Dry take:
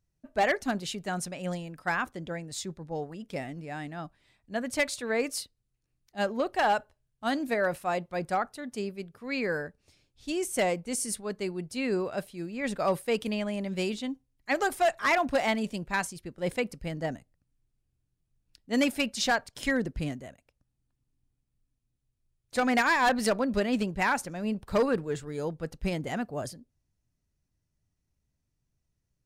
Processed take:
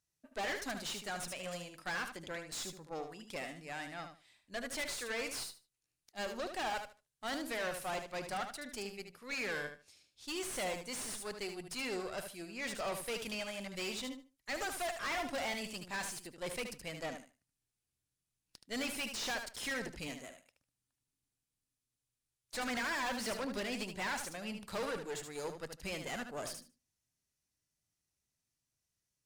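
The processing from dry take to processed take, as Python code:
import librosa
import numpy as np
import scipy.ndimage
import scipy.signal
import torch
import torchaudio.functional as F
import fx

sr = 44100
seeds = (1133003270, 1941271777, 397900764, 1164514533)

y = scipy.signal.sosfilt(scipy.signal.butter(2, 12000.0, 'lowpass', fs=sr, output='sos'), x)
y = fx.tilt_eq(y, sr, slope=3.0)
y = fx.tube_stage(y, sr, drive_db=34.0, bias=0.7)
y = fx.echo_feedback(y, sr, ms=75, feedback_pct=19, wet_db=-8.0)
y = fx.slew_limit(y, sr, full_power_hz=73.0)
y = y * 10.0 ** (-1.0 / 20.0)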